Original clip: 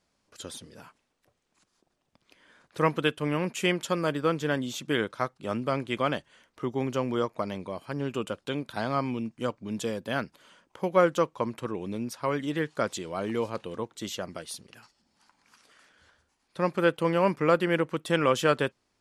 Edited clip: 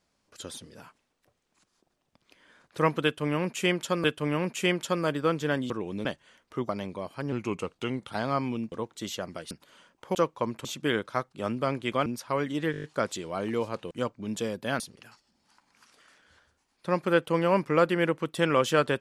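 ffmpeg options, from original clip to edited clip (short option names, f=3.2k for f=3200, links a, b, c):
-filter_complex "[0:a]asplit=20[a][b][c][d][e][f][g][h][i][j][k][l][m][n][o][p][q][r][s][t];[a]atrim=end=4.042[u];[b]atrim=start=3.038:end=4.702[v];[c]atrim=start=11.638:end=11.992[w];[d]atrim=start=6.108:end=6.752[x];[e]atrim=start=7.398:end=8.034[y];[f]atrim=start=8.03:end=8.75,asetpts=PTS-STARTPTS,asetrate=39249,aresample=44100,atrim=end_sample=35676,asetpts=PTS-STARTPTS[z];[g]atrim=start=8.746:end=9.342[aa];[h]atrim=start=13.718:end=14.512[ab];[i]atrim=start=10.228:end=10.872[ac];[j]atrim=start=11.138:end=11.642[ad];[k]atrim=start=4.698:end=6.112[ae];[l]atrim=start=11.988:end=12.672[af];[m]atrim=start=12.648:end=12.672[ag];[n]atrim=start=12.648:end=12.672[ah];[o]atrim=start=12.648:end=12.672[ai];[p]atrim=start=12.648:end=12.672[aj];[q]atrim=start=12.648:end=12.672[ak];[r]atrim=start=12.648:end=13.722[al];[s]atrim=start=9.338:end=10.232[am];[t]atrim=start=14.508[an];[u][v]acrossfade=d=0.004:c1=hsin:c2=hsin[ao];[ao][w]acrossfade=d=0.004:c1=hsin:c2=hsin[ap];[ap][x]acrossfade=d=0.004:c1=hsin:c2=hsin[aq];[aq][y]acrossfade=d=0.004:c1=hsin:c2=hsin[ar];[ar][z]acrossfade=d=0.004:c1=hsin:c2=hsin[as];[as][aa]acrossfade=d=0.004:c1=hsin:c2=hsin[at];[at][ab]acrossfade=d=0.004:c1=hsin:c2=hsin[au];[au][ac]acrossfade=d=0.004:c1=hsin:c2=hsin[av];[av][ad]acrossfade=d=0.004:c1=hsin:c2=hsin[aw];[aw][ae]acrossfade=d=0.004:c1=hsin:c2=hsin[ax];[ax][af]acrossfade=d=0.004:c1=hsin:c2=hsin[ay];[ay][ag]acrossfade=d=0.004:c1=hsin:c2=hsin[az];[az][ah]acrossfade=d=0.004:c1=hsin:c2=hsin[ba];[ba][ai]acrossfade=d=0.004:c1=hsin:c2=hsin[bb];[bb][aj]acrossfade=d=0.004:c1=hsin:c2=hsin[bc];[bc][ak]acrossfade=d=0.004:c1=hsin:c2=hsin[bd];[bd][al]acrossfade=d=0.004:c1=hsin:c2=hsin[be];[be][am]acrossfade=d=0.004:c1=hsin:c2=hsin[bf];[bf][an]acrossfade=d=0.004:c1=hsin:c2=hsin"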